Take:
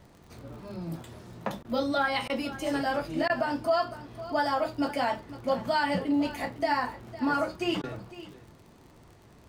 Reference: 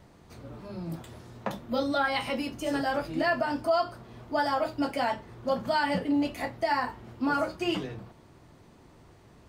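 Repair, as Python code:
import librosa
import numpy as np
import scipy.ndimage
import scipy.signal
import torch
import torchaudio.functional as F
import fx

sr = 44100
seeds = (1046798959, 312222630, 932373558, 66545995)

y = fx.fix_declick_ar(x, sr, threshold=6.5)
y = fx.fix_interpolate(y, sr, at_s=(1.63, 2.28, 3.28, 7.82), length_ms=15.0)
y = fx.fix_echo_inverse(y, sr, delay_ms=506, level_db=-15.5)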